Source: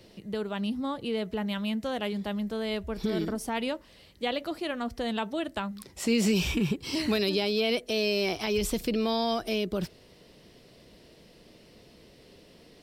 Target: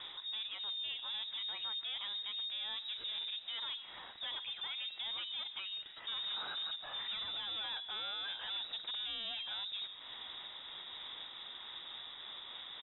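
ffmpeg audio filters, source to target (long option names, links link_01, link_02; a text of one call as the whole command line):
ffmpeg -i in.wav -filter_complex "[0:a]asplit=2[link_01][link_02];[link_02]acompressor=threshold=-42dB:ratio=6,volume=3dB[link_03];[link_01][link_03]amix=inputs=2:normalize=0,lowshelf=frequency=84:gain=-7,bandreject=frequency=98.46:width_type=h:width=4,bandreject=frequency=196.92:width_type=h:width=4,bandreject=frequency=295.38:width_type=h:width=4,bandreject=frequency=393.84:width_type=h:width=4,bandreject=frequency=492.3:width_type=h:width=4,bandreject=frequency=590.76:width_type=h:width=4,bandreject=frequency=689.22:width_type=h:width=4,bandreject=frequency=787.68:width_type=h:width=4,bandreject=frequency=886.14:width_type=h:width=4,bandreject=frequency=984.6:width_type=h:width=4,bandreject=frequency=1083.06:width_type=h:width=4,bandreject=frequency=1181.52:width_type=h:width=4,bandreject=frequency=1279.98:width_type=h:width=4,acrusher=bits=8:mix=0:aa=0.000001,asoftclip=type=tanh:threshold=-29dB,alimiter=level_in=15.5dB:limit=-24dB:level=0:latency=1:release=251,volume=-15.5dB,lowpass=frequency=3300:width_type=q:width=0.5098,lowpass=frequency=3300:width_type=q:width=0.6013,lowpass=frequency=3300:width_type=q:width=0.9,lowpass=frequency=3300:width_type=q:width=2.563,afreqshift=-3900,aecho=1:1:143:0.106,volume=2dB" out.wav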